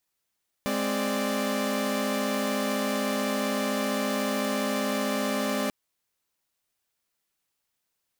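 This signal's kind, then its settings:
held notes G#3/C4/D5 saw, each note −27.5 dBFS 5.04 s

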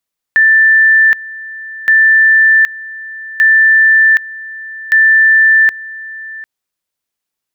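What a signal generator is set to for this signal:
tone at two levels in turn 1,770 Hz −4.5 dBFS, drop 19.5 dB, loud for 0.77 s, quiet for 0.75 s, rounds 4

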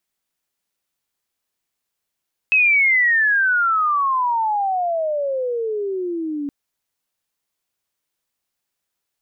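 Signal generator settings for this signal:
glide logarithmic 2,600 Hz → 280 Hz −11.5 dBFS → −22.5 dBFS 3.97 s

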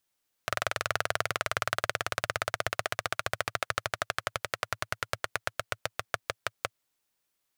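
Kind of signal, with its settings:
pulse-train model of a single-cylinder engine, changing speed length 6.26 s, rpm 2,600, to 600, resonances 110/630/1,300 Hz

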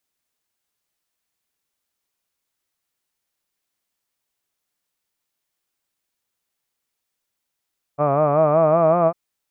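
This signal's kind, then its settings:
vowel by formant synthesis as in hud, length 1.15 s, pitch 141 Hz, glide +3.5 semitones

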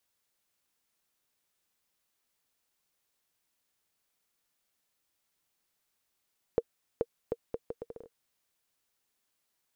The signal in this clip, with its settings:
bouncing ball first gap 0.43 s, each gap 0.72, 467 Hz, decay 45 ms −14 dBFS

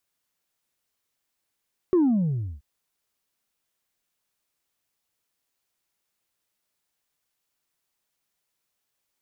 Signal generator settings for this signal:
bass drop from 380 Hz, over 0.68 s, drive 1 dB, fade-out 0.68 s, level −16 dB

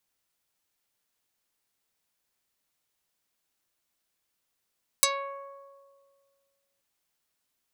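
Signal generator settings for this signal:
Karplus-Strong string C#5, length 1.78 s, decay 1.95 s, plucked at 0.32, dark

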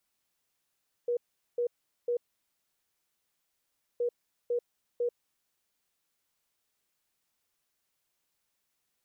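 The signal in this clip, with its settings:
beeps in groups sine 481 Hz, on 0.09 s, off 0.41 s, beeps 3, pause 1.83 s, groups 2, −26 dBFS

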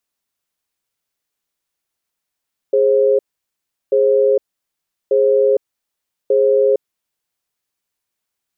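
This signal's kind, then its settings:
tone pair in a cadence 414 Hz, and 534 Hz, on 0.46 s, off 0.73 s, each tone −13 dBFS 4.26 s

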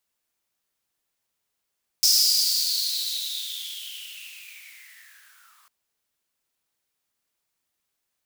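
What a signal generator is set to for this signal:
filter sweep on noise white, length 3.65 s highpass, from 5,200 Hz, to 1,100 Hz, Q 10, linear, gain ramp −37 dB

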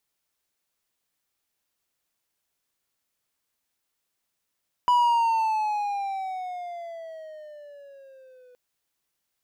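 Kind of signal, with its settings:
pitch glide with a swell triangle, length 3.67 s, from 986 Hz, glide −12 semitones, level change −34 dB, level −14 dB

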